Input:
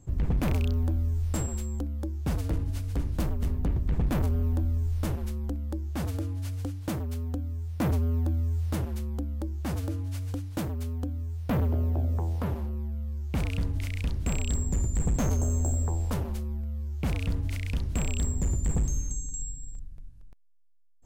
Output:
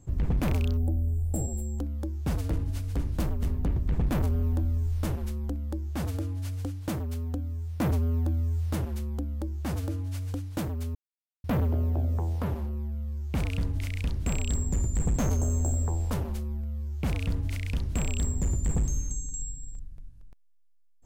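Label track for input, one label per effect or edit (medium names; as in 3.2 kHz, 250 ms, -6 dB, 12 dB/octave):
0.770000	1.780000	time-frequency box 840–7100 Hz -19 dB
10.950000	11.440000	mute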